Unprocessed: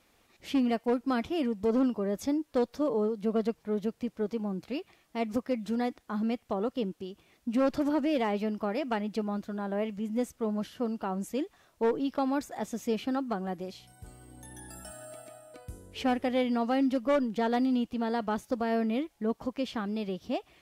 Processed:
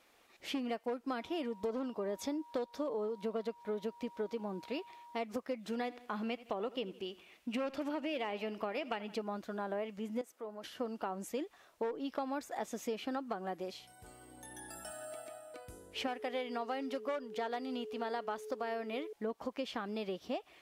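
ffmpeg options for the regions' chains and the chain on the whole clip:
-filter_complex "[0:a]asettb=1/sr,asplit=3[a][b][c];[a]atrim=end=1.164[d];[b]atrim=start=1.16:end=5.19,asetpts=PTS-STARTPTS,afade=t=in:d=0.004:c=qsin,afade=t=out:st=4.026:d=0.004:c=qsin,aeval=exprs='val(0)+0.00224*sin(2*PI*950*n/s)':c=same,equalizer=f=3.7k:w=4.8:g=4[e];[c]atrim=start=5.186[f];[d][e]acrossfade=d=0.004:c1=hsin:c2=qsin[g];[g][f]acrossfade=d=0.004:c1=qsin:c2=hsin,asettb=1/sr,asplit=3[h][i][j];[h]atrim=end=5.724[k];[i]atrim=start=5.72:end=9.15,asetpts=PTS-STARTPTS,afade=t=in:d=0.004:c=qsin,afade=t=out:st=3.426:d=0.004:c=qsin,equalizer=f=2.7k:t=o:w=0.61:g=8,aecho=1:1:82|164|246:0.1|0.043|0.0185,atrim=end_sample=151263[l];[j]atrim=start=9.146[m];[k][l]acrossfade=d=0.004:c1=hsin:c2=qsin[n];[n][m]acrossfade=d=0.004:c1=qsin:c2=hsin,asettb=1/sr,asplit=3[o][p][q];[o]atrim=end=10.214[r];[p]atrim=start=10.21:end=10.64,asetpts=PTS-STARTPTS,afade=t=in:d=0.004:c=qsin,afade=t=out:st=0.426:d=0.004:c=qsin,highpass=320,equalizer=f=3.9k:t=o:w=2.3:g=-5,acompressor=threshold=-46dB:ratio=2:attack=3.2:release=140:knee=1:detection=peak[s];[q]atrim=start=10.636[t];[r][s]acrossfade=d=0.004:c1=hsin:c2=qsin[u];[u][t]acrossfade=d=0.004:c1=qsin:c2=hsin,asettb=1/sr,asplit=3[v][w][x];[v]atrim=end=16.074[y];[w]atrim=start=16.07:end=19.13,asetpts=PTS-STARTPTS,afade=t=in:d=0.004:c=qsin,afade=t=out:st=3.056:d=0.004:c=qsin,lowshelf=f=320:g=-9.5,aeval=exprs='val(0)+0.00891*sin(2*PI*430*n/s)':c=same[z];[x]atrim=start=19.126[aa];[y][z]acrossfade=d=0.004:c1=hsin:c2=qsin[ab];[ab][aa]acrossfade=d=0.004:c1=qsin:c2=hsin,bass=f=250:g=-13,treble=f=4k:g=-3,acompressor=threshold=-35dB:ratio=6,volume=1dB"

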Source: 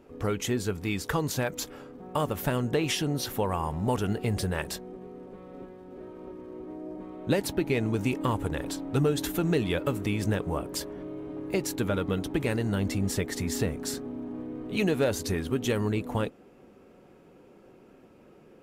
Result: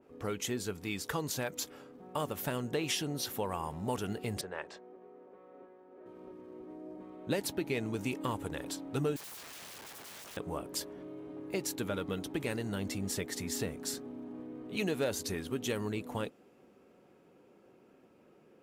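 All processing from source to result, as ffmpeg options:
-filter_complex "[0:a]asettb=1/sr,asplit=3[a][b][c];[a]atrim=end=4.414[d];[b]atrim=start=4.41:end=6.06,asetpts=PTS-STARTPTS,afade=t=in:d=0.004:c=qsin,afade=t=out:st=1.646:d=0.004:c=qsin,lowpass=f=7.1k:w=0.5412,lowpass=f=7.1k:w=1.3066,acrossover=split=330 2300:gain=0.178 1 0.178[e][f][g];[e][f][g]amix=inputs=3:normalize=0[h];[c]atrim=start=6.056[i];[d][h]acrossfade=d=0.004:c1=hsin:c2=qsin[j];[j][i]acrossfade=d=0.004:c1=qsin:c2=hsin,asettb=1/sr,asplit=3[k][l][m];[k]atrim=end=9.164[n];[l]atrim=start=9.16:end=10.37,asetpts=PTS-STARTPTS,afade=t=in:d=0.004:c=qsin,afade=t=out:st=1.206:d=0.004:c=qsin,asuperstop=centerf=780:order=12:qfactor=0.77,acrossover=split=140|390|1000[o][p][q][r];[o]acompressor=threshold=-46dB:ratio=3[s];[p]acompressor=threshold=-36dB:ratio=3[t];[q]acompressor=threshold=-45dB:ratio=3[u];[r]acompressor=threshold=-42dB:ratio=3[v];[s][t][u][v]amix=inputs=4:normalize=0,aeval=exprs='(mod(84.1*val(0)+1,2)-1)/84.1':c=same[w];[m]atrim=start=10.366[x];[n][w]acrossfade=d=0.004:c1=hsin:c2=qsin[y];[y][x]acrossfade=d=0.004:c1=qsin:c2=hsin,highpass=f=140:p=1,adynamicequalizer=threshold=0.00562:dfrequency=2800:dqfactor=0.7:tfrequency=2800:tqfactor=0.7:attack=5:release=100:ratio=0.375:range=2:mode=boostabove:tftype=highshelf,volume=-6.5dB"

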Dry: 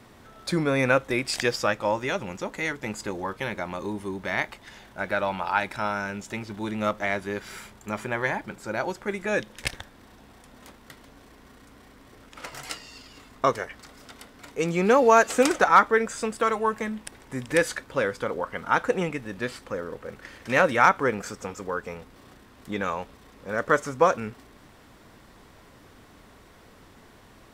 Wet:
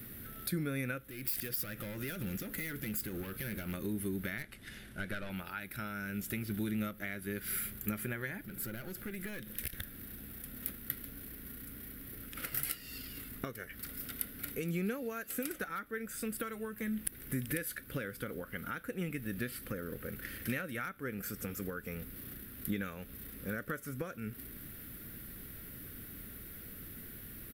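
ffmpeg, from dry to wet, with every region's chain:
-filter_complex "[0:a]asettb=1/sr,asplit=3[a][b][c];[a]atrim=end=1.064[d];[b]atrim=start=1.06:end=3.74,asetpts=PTS-STARTPTS,afade=t=in:d=0.004:c=qsin,afade=t=out:st=2.676:d=0.004:c=qsin,acompressor=threshold=-32dB:ratio=4:attack=3.2:release=140:knee=1:detection=peak,asoftclip=type=hard:threshold=-35.5dB[e];[c]atrim=start=3.736[f];[d][e]acrossfade=d=0.004:c1=hsin:c2=qsin[g];[g][f]acrossfade=d=0.004:c1=qsin:c2=hsin,asettb=1/sr,asplit=3[h][i][j];[h]atrim=end=4.384[k];[i]atrim=start=4.38:end=5.3,asetpts=PTS-STARTPTS,afade=t=in:d=0.004:c=qsin,afade=t=out:st=0.916:d=0.004:c=qsin,lowpass=f=10k:w=0.5412,lowpass=f=10k:w=1.3066,aeval=exprs='(tanh(12.6*val(0)+0.5)-tanh(0.5))/12.6':c=same[l];[j]atrim=start=5.296[m];[k][l]acrossfade=d=0.004:c1=hsin:c2=qsin[n];[n][m]acrossfade=d=0.004:c1=qsin:c2=hsin,asettb=1/sr,asplit=3[o][p][q];[o]atrim=end=8.454[r];[p]atrim=start=8.45:end=9.79,asetpts=PTS-STARTPTS,afade=t=in:d=0.004:c=qsin,afade=t=out:st=1.336:d=0.004:c=qsin,acompressor=threshold=-40dB:ratio=2.5:attack=3.2:release=140:knee=1:detection=peak,aeval=exprs='clip(val(0),-1,0.00794)':c=same[s];[q]atrim=start=9.786[t];[r][s]acrossfade=d=0.004:c1=hsin:c2=qsin[u];[u][t]acrossfade=d=0.004:c1=qsin:c2=hsin,highshelf=f=3.2k:g=10.5,acompressor=threshold=-34dB:ratio=5,firequalizer=gain_entry='entry(190,0);entry(950,-24);entry(1400,-6);entry(6800,-19);entry(12000,9)':delay=0.05:min_phase=1,volume=4dB"

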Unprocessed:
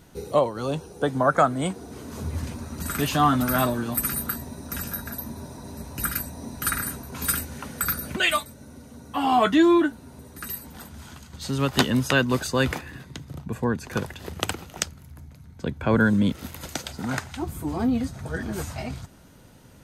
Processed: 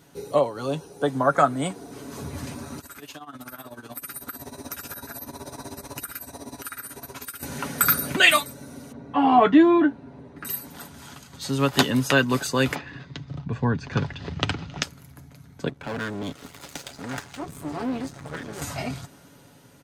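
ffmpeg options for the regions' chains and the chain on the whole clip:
-filter_complex "[0:a]asettb=1/sr,asplit=3[a][b][c];[a]atrim=end=2.794[d];[b]atrim=start=2.79:end=7.43,asetpts=PTS-STARTPTS,afade=t=in:d=0.004:c=qsin,afade=t=out:st=4.636:d=0.004:c=qsin,equalizer=f=170:w=1.9:g=-11,acompressor=threshold=-37dB:ratio=20:attack=3.2:release=140:knee=1:detection=peak,tremolo=f=16:d=0.82[e];[c]atrim=start=7.426[f];[d][e]acrossfade=d=0.004:c1=hsin:c2=qsin[g];[g][f]acrossfade=d=0.004:c1=qsin:c2=hsin,asettb=1/sr,asplit=3[h][i][j];[h]atrim=end=8.924[k];[i]atrim=start=8.92:end=10.45,asetpts=PTS-STARTPTS,afade=t=in:d=0.004:c=qsin,afade=t=out:st=1.526:d=0.004:c=qsin,lowpass=2k,equalizer=f=1.3k:t=o:w=0.69:g=-5[l];[j]atrim=start=10.446[m];[k][l]acrossfade=d=0.004:c1=hsin:c2=qsin[n];[n][m]acrossfade=d=0.004:c1=qsin:c2=hsin,asettb=1/sr,asplit=3[o][p][q];[o]atrim=end=12.754[r];[p]atrim=start=12.75:end=14.83,asetpts=PTS-STARTPTS,afade=t=in:d=0.004:c=qsin,afade=t=out:st=2.076:d=0.004:c=qsin,lowpass=f=5.2k:w=0.5412,lowpass=f=5.2k:w=1.3066,asubboost=boost=7.5:cutoff=200[s];[q]atrim=start=14.826[t];[r][s]acrossfade=d=0.004:c1=hsin:c2=qsin[u];[u][t]acrossfade=d=0.004:c1=qsin:c2=hsin,asettb=1/sr,asplit=3[v][w][x];[v]atrim=end=15.684[y];[w]atrim=start=15.68:end=18.62,asetpts=PTS-STARTPTS,afade=t=in:d=0.004:c=qsin,afade=t=out:st=2.936:d=0.004:c=qsin,lowpass=10k,aeval=exprs='max(val(0),0)':c=same,aeval=exprs='(tanh(5.01*val(0)+0.6)-tanh(0.6))/5.01':c=same[z];[x]atrim=start=18.616[aa];[y][z]acrossfade=d=0.004:c1=hsin:c2=qsin[ab];[ab][aa]acrossfade=d=0.004:c1=qsin:c2=hsin,highpass=f=170:p=1,aecho=1:1:7.1:0.41,dynaudnorm=f=950:g=5:m=11.5dB,volume=-1dB"

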